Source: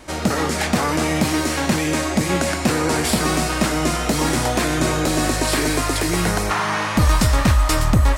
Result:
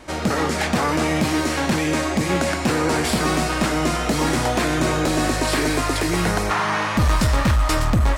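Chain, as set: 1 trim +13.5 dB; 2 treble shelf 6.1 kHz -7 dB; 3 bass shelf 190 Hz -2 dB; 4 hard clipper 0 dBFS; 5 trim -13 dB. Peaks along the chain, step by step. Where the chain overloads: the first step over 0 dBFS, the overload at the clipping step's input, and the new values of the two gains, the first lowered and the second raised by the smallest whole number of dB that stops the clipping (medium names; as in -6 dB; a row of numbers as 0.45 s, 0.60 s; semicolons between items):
+6.5 dBFS, +6.5 dBFS, +6.0 dBFS, 0.0 dBFS, -13.0 dBFS; step 1, 6.0 dB; step 1 +7.5 dB, step 5 -7 dB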